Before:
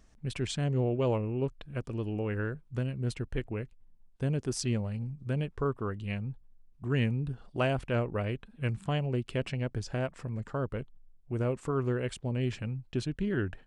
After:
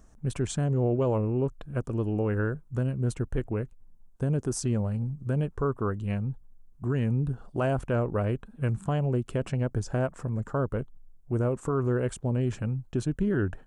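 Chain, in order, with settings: band shelf 3100 Hz -10 dB; limiter -24 dBFS, peak gain reduction 6 dB; gain +5.5 dB

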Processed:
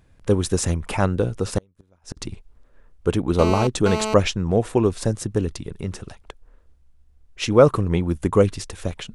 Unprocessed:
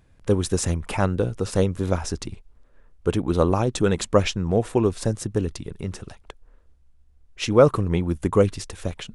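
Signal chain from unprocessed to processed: 1.58–2.17 flipped gate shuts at -17 dBFS, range -38 dB; 3.39–4.14 GSM buzz -27 dBFS; gain +1.5 dB

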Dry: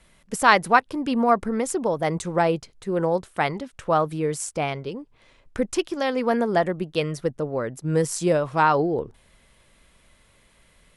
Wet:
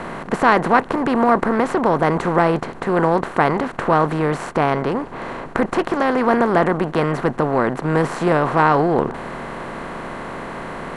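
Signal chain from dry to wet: per-bin compression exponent 0.4; LPF 1100 Hz 6 dB/oct; bell 550 Hz -3 dB 0.65 oct; gain +2 dB

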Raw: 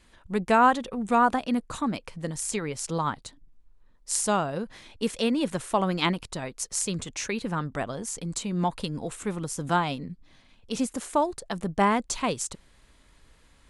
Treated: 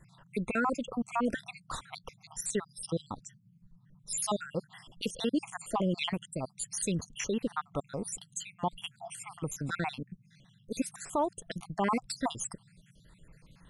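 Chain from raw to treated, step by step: random spectral dropouts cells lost 66%; limiter -20.5 dBFS, peak gain reduction 10.5 dB; band noise 110–190 Hz -62 dBFS

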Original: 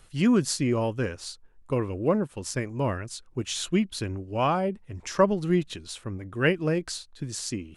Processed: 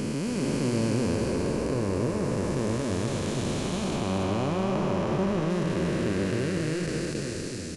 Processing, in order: time blur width 1.42 s; 3.96–5.5 high shelf 6000 Hz -7 dB; echo 0.273 s -4.5 dB; gain +6 dB

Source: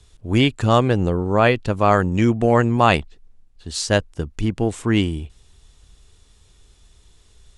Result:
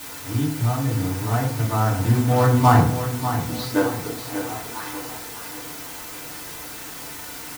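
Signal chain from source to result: Doppler pass-by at 3.12, 21 m/s, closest 7.9 m; LPF 4700 Hz 24 dB/oct; notch 560 Hz, Q 12; treble ducked by the level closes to 1900 Hz, closed at -24.5 dBFS; fifteen-band EQ 160 Hz -3 dB, 400 Hz -9 dB, 2500 Hz -11 dB; in parallel at -1.5 dB: compressor, threshold -40 dBFS, peak gain reduction 22 dB; on the sum: companded quantiser 4-bit; high-pass sweep 120 Hz -> 900 Hz, 3.04–4.56; requantised 6-bit, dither triangular; on a send: feedback echo 0.595 s, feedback 42%, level -10 dB; on the sum: FDN reverb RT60 0.52 s, low-frequency decay 1.25×, high-frequency decay 0.3×, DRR -6.5 dB; gain -4 dB

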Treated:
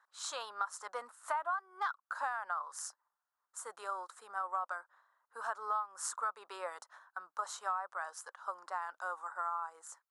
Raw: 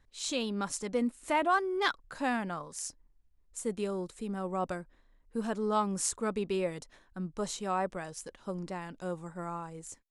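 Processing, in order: HPF 840 Hz 24 dB/oct; resonant high shelf 1800 Hz -9.5 dB, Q 3; compressor 10:1, threshold -38 dBFS, peak gain reduction 19 dB; gain +5.5 dB

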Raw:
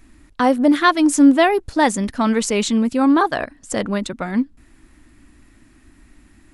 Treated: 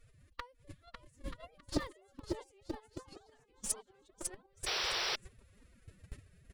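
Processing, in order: flipped gate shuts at -16 dBFS, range -34 dB; bell 1500 Hz -3 dB 1.1 oct; on a send: bouncing-ball echo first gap 0.55 s, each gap 0.7×, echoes 5; on the sum: formant-preserving pitch shift +11.5 st; gate -44 dBFS, range -15 dB; painted sound noise, 4.66–5.16, 340–5900 Hz -38 dBFS; in parallel at -6 dB: Schmitt trigger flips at -41 dBFS; on the sum: bell 3200 Hz +2.5 dB 0.66 oct; gain +1 dB

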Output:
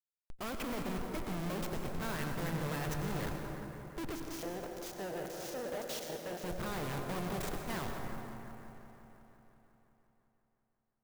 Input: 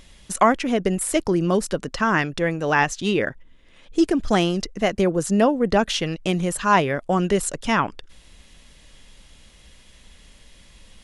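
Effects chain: bin magnitudes rounded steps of 30 dB; low-pass opened by the level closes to 390 Hz, open at -16.5 dBFS; dynamic EQ 130 Hz, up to +7 dB, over -40 dBFS, Q 1.2; Schmitt trigger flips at -31 dBFS; 4.15–6.44 LFO band-pass square 1.8 Hz 560–6400 Hz; soft clip -38 dBFS, distortion -7 dB; dark delay 0.176 s, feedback 73%, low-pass 2000 Hz, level -9 dB; plate-style reverb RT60 2.9 s, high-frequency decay 0.55×, pre-delay 80 ms, DRR 4 dB; clock jitter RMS 0.028 ms; gain -1 dB

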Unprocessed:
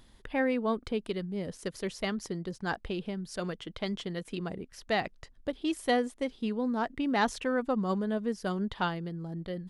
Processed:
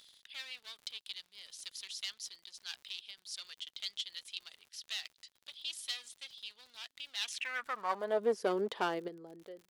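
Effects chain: ending faded out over 0.98 s; in parallel at +1 dB: level quantiser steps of 20 dB; on the sum: one-sided clip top -30 dBFS; high-pass sweep 3700 Hz -> 420 Hz, 7.16–8.28; crackle 64/s -45 dBFS; gain -3.5 dB

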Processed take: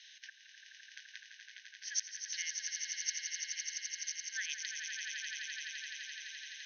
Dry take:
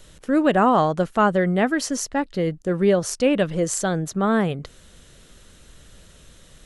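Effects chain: compressor 8:1, threshold -20 dBFS, peak gain reduction 8 dB; flipped gate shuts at -16 dBFS, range -41 dB; brick-wall FIR band-pass 1500–6500 Hz; on a send: swelling echo 85 ms, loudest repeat 8, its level -7 dB

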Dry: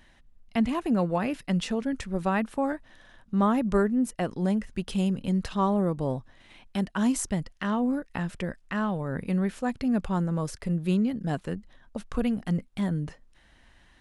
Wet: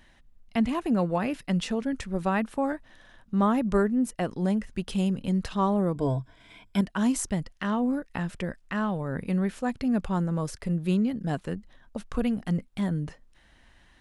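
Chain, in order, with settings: 5.94–6.81 ripple EQ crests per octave 1.7, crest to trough 13 dB

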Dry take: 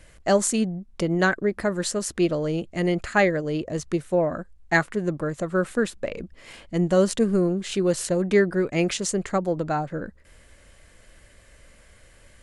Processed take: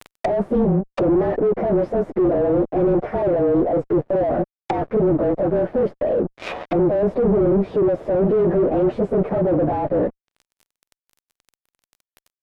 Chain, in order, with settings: inharmonic rescaling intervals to 108%; HPF 300 Hz 12 dB/oct; bell 670 Hz +7.5 dB 1.3 oct; in parallel at -3 dB: negative-ratio compressor -30 dBFS, ratio -1; on the sum: fuzz box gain 34 dB, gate -40 dBFS; treble ducked by the level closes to 520 Hz, closed at -17.5 dBFS

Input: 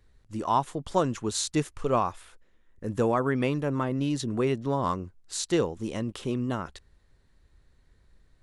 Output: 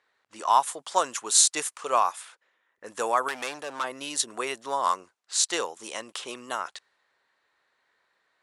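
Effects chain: 3.28–3.84 hard clip -27 dBFS, distortion -16 dB; low-pass opened by the level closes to 2600 Hz, open at -24 dBFS; Chebyshev high-pass 880 Hz, order 2; bell 9900 Hz +13 dB 1.3 oct; gain +5 dB

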